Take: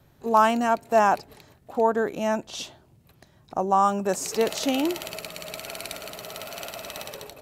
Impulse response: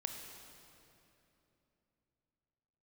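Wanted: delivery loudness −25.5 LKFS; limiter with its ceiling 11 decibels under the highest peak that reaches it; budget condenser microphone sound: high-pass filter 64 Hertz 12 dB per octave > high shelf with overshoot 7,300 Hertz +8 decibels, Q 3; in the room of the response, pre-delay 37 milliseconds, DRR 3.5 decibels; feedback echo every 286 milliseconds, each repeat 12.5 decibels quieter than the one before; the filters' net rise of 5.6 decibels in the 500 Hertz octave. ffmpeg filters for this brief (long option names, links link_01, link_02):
-filter_complex "[0:a]equalizer=frequency=500:width_type=o:gain=7.5,alimiter=limit=-15.5dB:level=0:latency=1,aecho=1:1:286|572|858:0.237|0.0569|0.0137,asplit=2[link_01][link_02];[1:a]atrim=start_sample=2205,adelay=37[link_03];[link_02][link_03]afir=irnorm=-1:irlink=0,volume=-3dB[link_04];[link_01][link_04]amix=inputs=2:normalize=0,highpass=64,highshelf=frequency=7300:width_type=q:width=3:gain=8,volume=-0.5dB"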